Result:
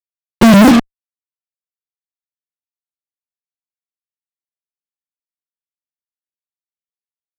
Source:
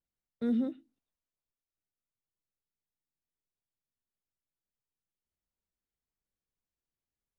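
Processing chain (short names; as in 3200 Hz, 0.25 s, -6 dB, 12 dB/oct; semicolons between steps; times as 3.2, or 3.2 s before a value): repeated pitch sweeps -4 st, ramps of 0.215 s; resonator 79 Hz, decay 0.71 s, harmonics all, mix 30%; fuzz box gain 66 dB, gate -58 dBFS; gain +9 dB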